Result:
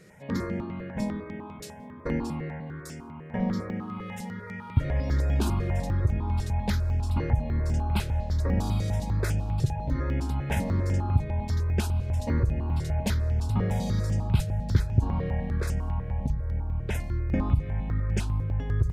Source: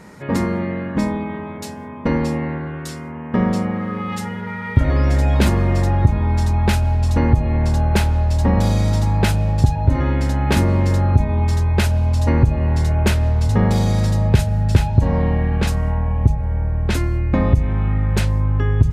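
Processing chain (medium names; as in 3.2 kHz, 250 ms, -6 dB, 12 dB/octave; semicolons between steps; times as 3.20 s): stepped phaser 10 Hz 240–4000 Hz; trim -8 dB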